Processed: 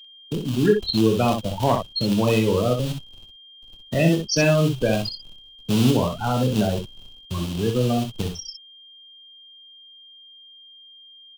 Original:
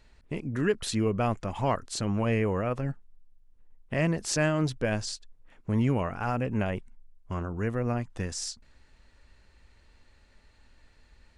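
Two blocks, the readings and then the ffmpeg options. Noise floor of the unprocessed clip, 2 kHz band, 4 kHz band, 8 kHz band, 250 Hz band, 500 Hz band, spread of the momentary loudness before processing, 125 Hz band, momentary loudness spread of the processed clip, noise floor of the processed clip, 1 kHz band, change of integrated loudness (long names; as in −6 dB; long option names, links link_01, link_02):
−60 dBFS, +4.0 dB, +11.5 dB, +3.5 dB, +8.0 dB, +8.5 dB, 11 LU, +6.5 dB, 13 LU, −48 dBFS, +6.0 dB, +8.0 dB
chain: -filter_complex "[0:a]lowpass=frequency=6300:width=0.5412,lowpass=frequency=6300:width=1.3066,afftfilt=real='re*gte(hypot(re,im),0.0708)':imag='im*gte(hypot(re,im),0.0708)':win_size=1024:overlap=0.75,acrossover=split=150|1100[link_01][link_02][link_03];[link_01]acrusher=bits=2:mode=log:mix=0:aa=0.000001[link_04];[link_04][link_02][link_03]amix=inputs=3:normalize=0,acrossover=split=130|3000[link_05][link_06][link_07];[link_05]acompressor=threshold=-38dB:ratio=10[link_08];[link_08][link_06][link_07]amix=inputs=3:normalize=0,highshelf=frequency=2400:width_type=q:width=3:gain=7,aeval=exprs='val(0)+0.00282*sin(2*PI*3200*n/s)':channel_layout=same,volume=16.5dB,asoftclip=hard,volume=-16.5dB,asplit=2[link_09][link_10];[link_10]aecho=0:1:24|63:0.376|0.501[link_11];[link_09][link_11]amix=inputs=2:normalize=0,volume=7.5dB"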